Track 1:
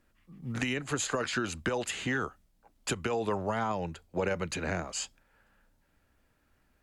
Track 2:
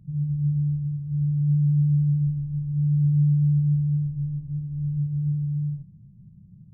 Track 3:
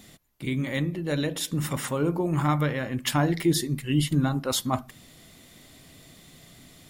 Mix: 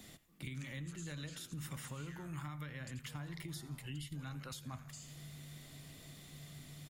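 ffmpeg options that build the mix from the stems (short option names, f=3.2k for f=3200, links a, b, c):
-filter_complex "[0:a]acompressor=threshold=-41dB:ratio=2,volume=-10.5dB,asplit=2[a][b];[b]volume=-10dB[c];[1:a]adelay=1550,volume=-16.5dB[d];[2:a]alimiter=limit=-22dB:level=0:latency=1:release=431,volume=-4.5dB,asplit=2[e][f];[f]volume=-21dB[g];[a][d]amix=inputs=2:normalize=0,bass=f=250:g=-13,treble=f=4k:g=11,acompressor=threshold=-48dB:ratio=6,volume=0dB[h];[c][g]amix=inputs=2:normalize=0,aecho=0:1:84|168|252|336|420:1|0.38|0.144|0.0549|0.0209[i];[e][h][i]amix=inputs=3:normalize=0,acrossover=split=160|1200[j][k][l];[j]acompressor=threshold=-44dB:ratio=4[m];[k]acompressor=threshold=-57dB:ratio=4[n];[l]acompressor=threshold=-49dB:ratio=4[o];[m][n][o]amix=inputs=3:normalize=0"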